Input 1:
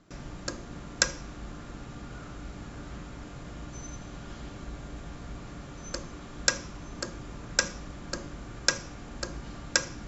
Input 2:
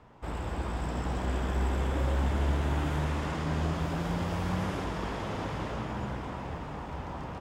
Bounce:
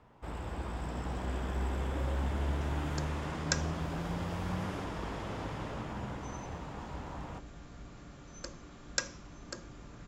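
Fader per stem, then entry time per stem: -8.0, -5.0 dB; 2.50, 0.00 s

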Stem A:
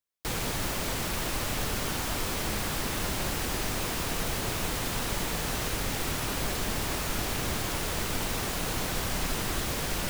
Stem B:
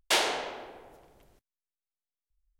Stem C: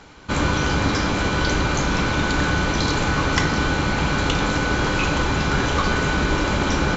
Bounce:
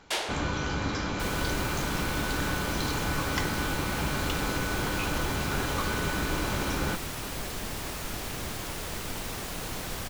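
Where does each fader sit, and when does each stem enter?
-4.5, -5.5, -10.0 dB; 0.95, 0.00, 0.00 s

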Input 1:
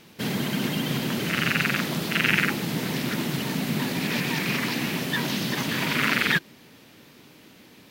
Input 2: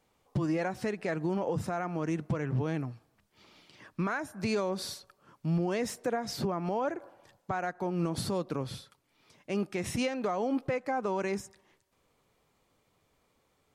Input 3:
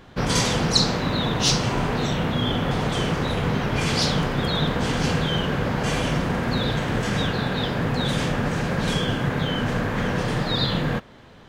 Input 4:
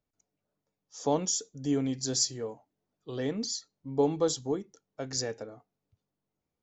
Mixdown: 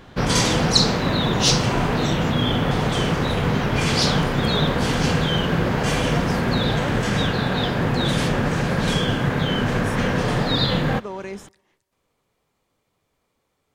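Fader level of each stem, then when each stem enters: -19.5, -0.5, +2.5, -19.5 dB; 0.15, 0.00, 0.00, 0.05 s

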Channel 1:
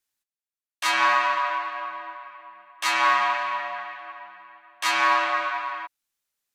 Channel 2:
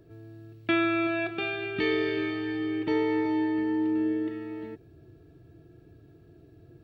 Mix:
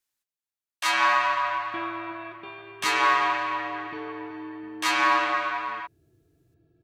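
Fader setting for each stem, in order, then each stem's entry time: -1.0, -11.5 dB; 0.00, 1.05 s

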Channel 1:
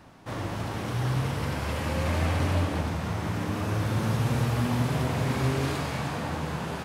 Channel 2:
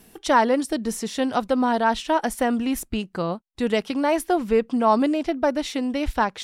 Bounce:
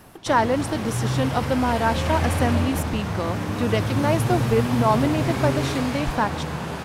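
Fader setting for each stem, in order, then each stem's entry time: +3.0, -1.5 dB; 0.00, 0.00 s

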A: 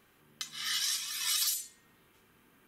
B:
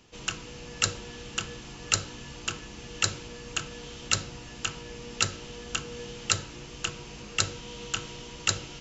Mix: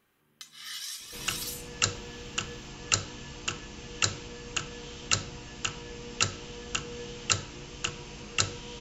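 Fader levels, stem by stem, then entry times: -6.5, -0.5 dB; 0.00, 1.00 s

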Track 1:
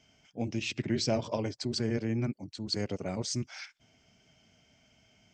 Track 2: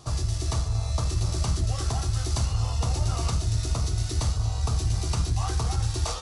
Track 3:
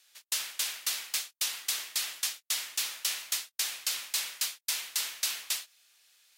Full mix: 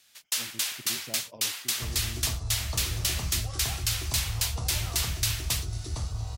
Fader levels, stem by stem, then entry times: -15.0, -7.0, +2.5 dB; 0.00, 1.75, 0.00 s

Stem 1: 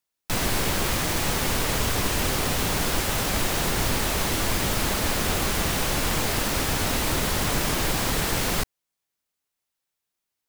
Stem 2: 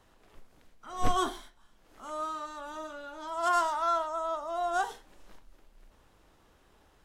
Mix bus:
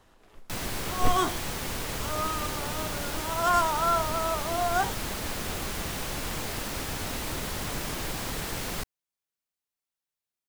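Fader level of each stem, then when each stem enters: -8.5, +3.0 dB; 0.20, 0.00 s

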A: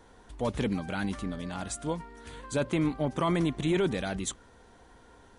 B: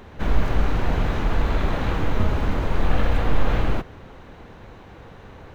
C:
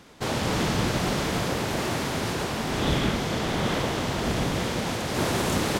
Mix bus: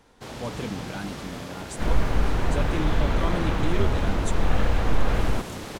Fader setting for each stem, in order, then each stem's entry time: -3.5, -2.0, -11.0 dB; 0.00, 1.60, 0.00 s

